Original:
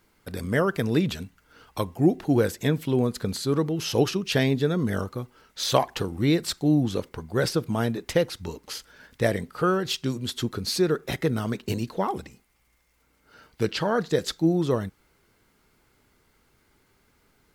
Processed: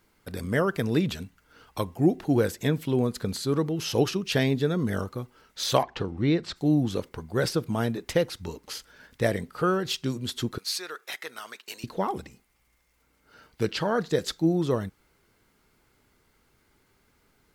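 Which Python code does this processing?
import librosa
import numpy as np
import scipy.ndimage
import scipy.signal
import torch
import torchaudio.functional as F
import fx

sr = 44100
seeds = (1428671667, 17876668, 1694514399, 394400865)

y = fx.air_absorb(x, sr, metres=150.0, at=(5.82, 6.55), fade=0.02)
y = fx.highpass(y, sr, hz=1100.0, slope=12, at=(10.58, 11.84))
y = F.gain(torch.from_numpy(y), -1.5).numpy()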